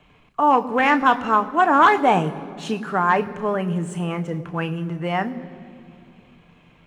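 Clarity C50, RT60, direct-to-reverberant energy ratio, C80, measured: 16.0 dB, 2.5 s, 9.0 dB, 16.5 dB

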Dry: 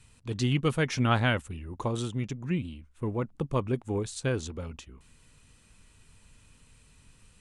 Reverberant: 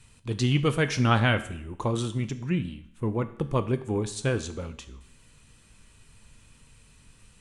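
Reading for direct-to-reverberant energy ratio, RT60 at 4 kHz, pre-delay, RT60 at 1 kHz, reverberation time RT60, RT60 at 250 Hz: 10.0 dB, 0.70 s, 5 ms, 0.70 s, 0.70 s, 0.70 s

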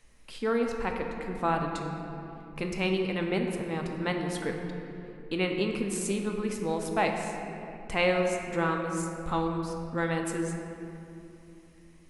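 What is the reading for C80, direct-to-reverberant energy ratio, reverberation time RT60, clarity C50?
5.0 dB, 2.0 dB, 2.9 s, 4.0 dB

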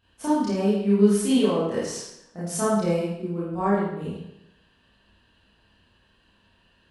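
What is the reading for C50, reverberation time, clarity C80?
-1.0 dB, 0.80 s, 2.5 dB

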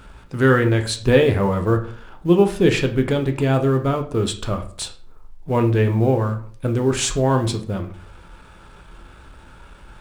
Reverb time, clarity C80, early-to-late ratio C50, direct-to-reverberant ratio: 0.45 s, 16.5 dB, 12.5 dB, 5.0 dB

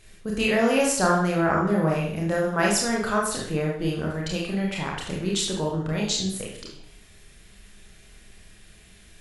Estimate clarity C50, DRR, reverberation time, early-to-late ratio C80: 3.0 dB, -2.5 dB, 0.60 s, 7.0 dB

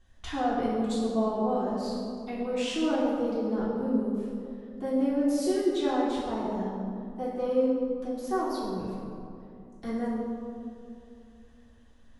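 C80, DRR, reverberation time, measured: 1.0 dB, -11.0 dB, 2.7 s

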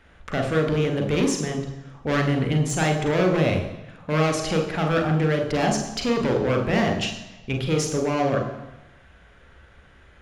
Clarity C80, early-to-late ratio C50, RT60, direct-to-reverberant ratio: 10.0 dB, 8.0 dB, 1.0 s, 3.5 dB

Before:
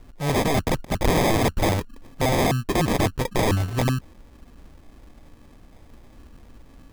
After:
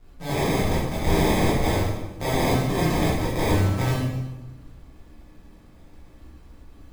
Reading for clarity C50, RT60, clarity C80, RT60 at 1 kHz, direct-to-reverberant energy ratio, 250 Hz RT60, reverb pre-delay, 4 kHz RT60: 0.0 dB, 1.1 s, 3.0 dB, 1.0 s, -8.5 dB, 1.4 s, 13 ms, 0.90 s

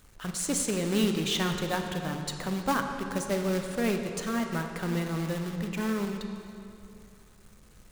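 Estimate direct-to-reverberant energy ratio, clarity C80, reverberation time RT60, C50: 4.5 dB, 6.5 dB, 2.7 s, 5.5 dB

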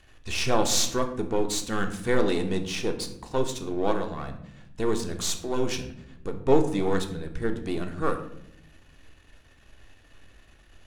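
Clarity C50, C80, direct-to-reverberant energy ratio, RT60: 10.5 dB, 13.0 dB, 5.0 dB, 0.80 s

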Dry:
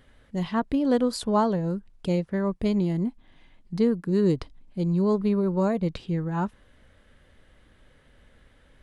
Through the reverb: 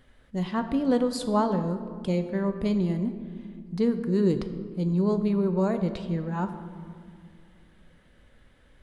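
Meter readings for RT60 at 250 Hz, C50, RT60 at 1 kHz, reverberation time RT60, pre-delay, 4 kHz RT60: 3.1 s, 10.0 dB, 2.1 s, 2.2 s, 4 ms, 1.1 s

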